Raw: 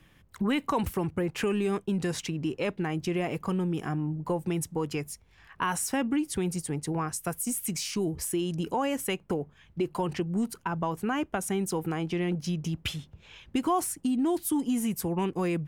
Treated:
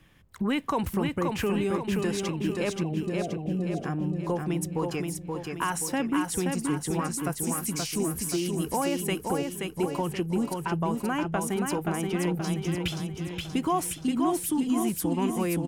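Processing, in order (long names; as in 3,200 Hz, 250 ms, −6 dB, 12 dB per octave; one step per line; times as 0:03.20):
0:02.83–0:03.84: Chebyshev low-pass with heavy ripple 750 Hz, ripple 3 dB
on a send: repeating echo 527 ms, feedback 49%, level −4 dB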